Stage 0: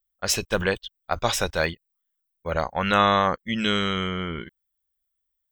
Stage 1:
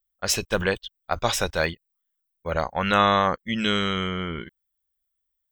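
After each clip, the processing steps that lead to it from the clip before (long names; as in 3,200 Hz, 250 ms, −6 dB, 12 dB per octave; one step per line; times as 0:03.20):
no processing that can be heard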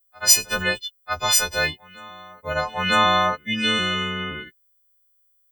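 every partial snapped to a pitch grid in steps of 3 semitones
backwards echo 951 ms −23.5 dB
harmonic and percussive parts rebalanced harmonic +8 dB
level −8.5 dB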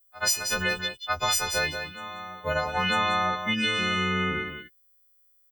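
downward compressor 6 to 1, threshold −25 dBFS, peak gain reduction 15 dB
single-tap delay 184 ms −7.5 dB
level +2 dB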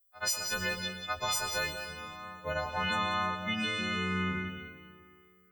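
convolution reverb RT60 1.9 s, pre-delay 88 ms, DRR 6.5 dB
level −7 dB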